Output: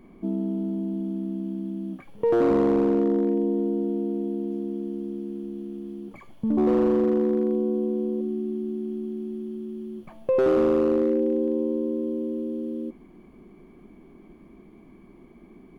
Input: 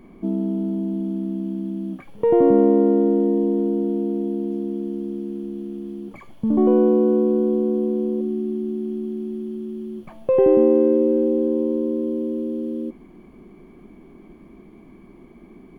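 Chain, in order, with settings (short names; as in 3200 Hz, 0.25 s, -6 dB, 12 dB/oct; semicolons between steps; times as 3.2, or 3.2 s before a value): hard clip -12 dBFS, distortion -17 dB; gain -4 dB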